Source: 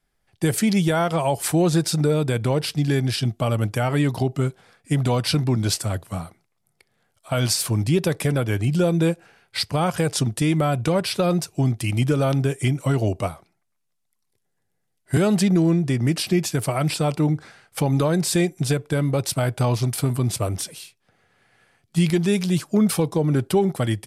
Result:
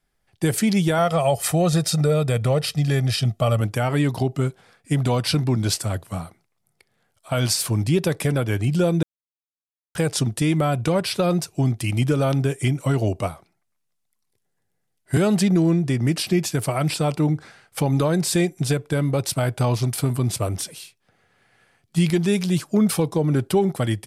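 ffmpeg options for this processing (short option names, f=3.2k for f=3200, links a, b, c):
-filter_complex "[0:a]asettb=1/sr,asplit=3[a][b][c];[a]atrim=end=0.984[d];[b]atrim=start=0.98:end=3.61,asetpts=PTS-STARTPTS,afade=t=in:d=0.004:c=qsin,afade=t=out:st=2.626:d=0.004:c=qsin,aecho=1:1:1.6:0.57,atrim=end_sample=115983[e];[c]atrim=start=3.606[f];[d][e]acrossfade=d=0.004:c1=hsin:c2=qsin[g];[g][f]acrossfade=d=0.004:c1=qsin:c2=hsin,asplit=3[h][i][j];[h]atrim=end=9.03,asetpts=PTS-STARTPTS,afade=t=out:st=9.026:d=0.004:c=hsin[k];[i]atrim=start=9.03:end=9.95,asetpts=PTS-STARTPTS,volume=0[l];[j]atrim=start=9.95,asetpts=PTS-STARTPTS,afade=t=in:d=0.004:c=hsin[m];[k][l][m]concat=n=3:v=0:a=1"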